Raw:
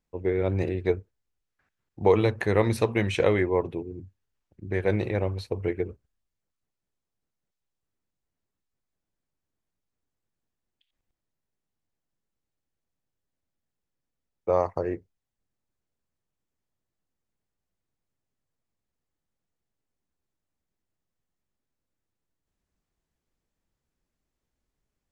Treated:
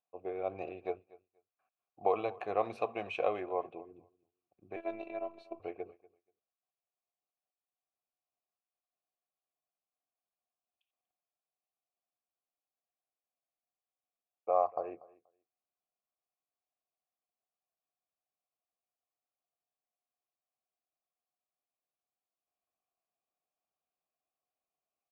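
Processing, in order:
formant filter a
on a send: repeating echo 240 ms, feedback 16%, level −21.5 dB
0:04.76–0:05.60: on the sum: phases set to zero 333 Hz
level +3.5 dB

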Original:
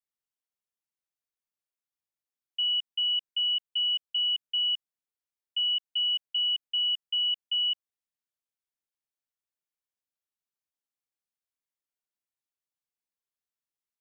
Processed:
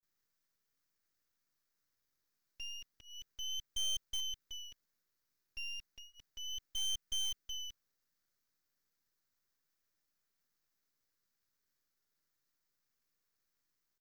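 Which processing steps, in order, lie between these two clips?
parametric band 2,900 Hz −10 dB 0.57 octaves
pitch vibrato 0.32 Hz 95 cents
phaser with its sweep stopped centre 2,900 Hz, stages 6
in parallel at −11.5 dB: bit reduction 8 bits
on the sum: half-wave rectification
level +16.5 dB

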